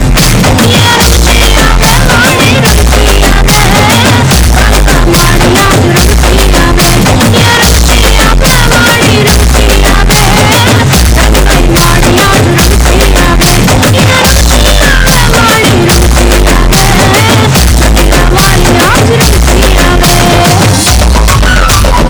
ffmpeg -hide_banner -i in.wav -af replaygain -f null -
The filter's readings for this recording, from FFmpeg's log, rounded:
track_gain = -11.8 dB
track_peak = 0.527